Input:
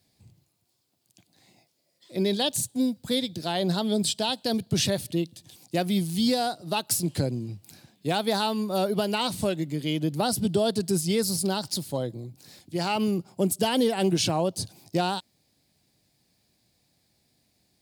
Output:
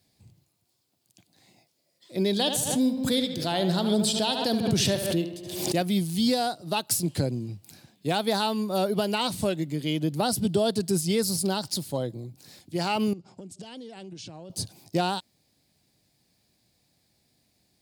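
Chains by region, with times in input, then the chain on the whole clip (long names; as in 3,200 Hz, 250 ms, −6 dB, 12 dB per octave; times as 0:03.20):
0:02.32–0:05.82: tape delay 73 ms, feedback 66%, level −8 dB, low-pass 4,100 Hz + background raised ahead of every attack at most 51 dB per second
0:13.13–0:14.50: low-pass filter 7,700 Hz 24 dB per octave + dynamic equaliser 1,100 Hz, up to −6 dB, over −39 dBFS, Q 0.71 + downward compressor 12 to 1, threshold −38 dBFS
whole clip: no processing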